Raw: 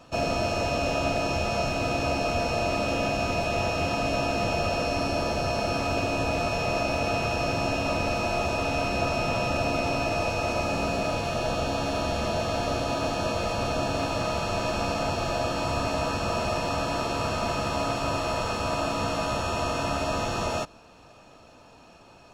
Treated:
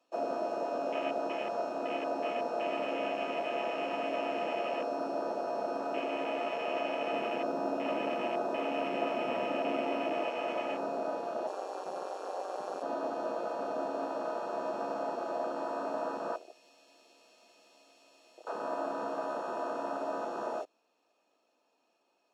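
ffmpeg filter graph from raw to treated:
-filter_complex "[0:a]asettb=1/sr,asplit=3[s0][s1][s2];[s0]atrim=end=7.134[s3];[s1]atrim=start=7.13:end=10.24,asetpts=PTS-STARTPTS,afade=t=in:d=0.004:c=qsin,afade=t=out:st=3.106:d=0.004:c=qsin,lowshelf=f=280:g=9.5,aeval=exprs='sgn(val(0))*max(abs(val(0))-0.0075,0)':c=same[s4];[s2]atrim=start=10.236[s5];[s3][s4]acrossfade=d=0.004:c1=hsin:c2=qsin[s6];[s6][s5]acrossfade=d=0.004:c1=qsin:c2=hsin,asettb=1/sr,asplit=3[s7][s8][s9];[s7]atrim=end=11.474[s10];[s8]atrim=start=11.47:end=12.83,asetpts=PTS-STARTPTS,afade=t=in:d=0.004:c=qsin,afade=t=out:st=1.356:d=0.004:c=qsin,highpass=290,equalizer=f=8700:w=0.77:g=10.5,aeval=exprs='val(0)*sin(2*PI*94*n/s)':c=same[s11];[s9]atrim=start=12.826[s12];[s10][s11]acrossfade=d=0.004:c1=hsin:c2=qsin[s13];[s13][s12]acrossfade=d=0.004:c1=qsin:c2=hsin,asettb=1/sr,asplit=3[s14][s15][s16];[s14]atrim=end=16.364[s17];[s15]atrim=start=16.36:end=18.47,asetpts=PTS-STARTPTS,afade=t=in:d=0.004:c=qsin,afade=t=out:st=2.106:d=0.004:c=qsin,equalizer=f=1200:t=o:w=1.4:g=-9.5,acrossover=split=440|1200[s18][s19][s20];[s18]acompressor=threshold=0.00501:ratio=4[s21];[s19]acompressor=threshold=0.00562:ratio=4[s22];[s20]acompressor=threshold=0.00891:ratio=4[s23];[s21][s22][s23]amix=inputs=3:normalize=0[s24];[s16]atrim=start=18.466[s25];[s17][s24]acrossfade=d=0.004:c1=hsin:c2=qsin[s26];[s26][s25]acrossfade=d=0.004:c1=qsin:c2=hsin,highpass=f=280:w=0.5412,highpass=f=280:w=1.3066,afwtdn=0.0316,equalizer=f=1400:t=o:w=0.77:g=-3.5,volume=0.562"

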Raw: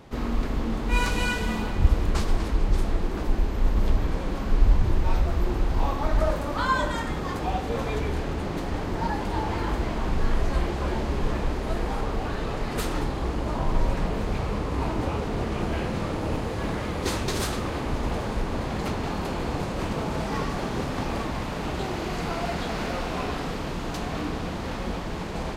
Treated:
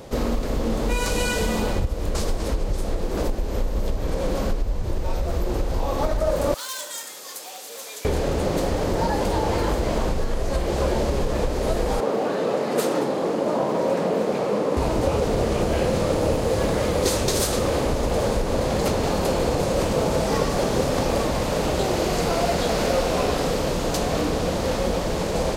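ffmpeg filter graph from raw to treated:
-filter_complex "[0:a]asettb=1/sr,asplit=3[s0][s1][s2];[s0]atrim=end=6.544[s3];[s1]atrim=start=6.54:end=8.05,asetpts=PTS-STARTPTS,afade=t=in:d=0.004:c=qsin,afade=t=out:st=1.506:d=0.004:c=qsin,highpass=f=180:w=0.5412,highpass=f=180:w=1.3066,asoftclip=type=hard:threshold=0.0631,aderivative[s4];[s2]atrim=start=8.046[s5];[s3][s4]acrossfade=d=0.004:c1=hsin:c2=qsin[s6];[s6][s5]acrossfade=d=0.004:c1=qsin:c2=hsin,asettb=1/sr,asplit=3[s7][s8][s9];[s7]atrim=end=12.004[s10];[s8]atrim=start=12:end=14.77,asetpts=PTS-STARTPTS,afade=t=in:d=0.004:c=qsin,afade=t=out:st=2.766:d=0.004:c=qsin,highpass=f=180:w=0.5412,highpass=f=180:w=1.3066,highshelf=f=2800:g=-9[s11];[s9]atrim=start=14.766[s12];[s10][s11]acrossfade=d=0.004:c1=hsin:c2=qsin[s13];[s13][s12]acrossfade=d=0.004:c1=qsin:c2=hsin,bass=f=250:g=2,treble=f=4000:g=11,acompressor=threshold=0.0708:ratio=10,equalizer=f=530:t=o:w=0.72:g=11.5,volume=1.5"

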